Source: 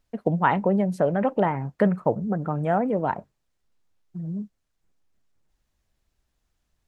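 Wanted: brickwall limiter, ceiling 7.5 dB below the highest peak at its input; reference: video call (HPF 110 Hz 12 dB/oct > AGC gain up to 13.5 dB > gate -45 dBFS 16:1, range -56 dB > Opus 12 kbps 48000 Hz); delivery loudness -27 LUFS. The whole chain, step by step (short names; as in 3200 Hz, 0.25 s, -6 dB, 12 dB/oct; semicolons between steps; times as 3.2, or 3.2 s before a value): limiter -13.5 dBFS; HPF 110 Hz 12 dB/oct; AGC gain up to 13.5 dB; gate -45 dBFS 16:1, range -56 dB; gain -0.5 dB; Opus 12 kbps 48000 Hz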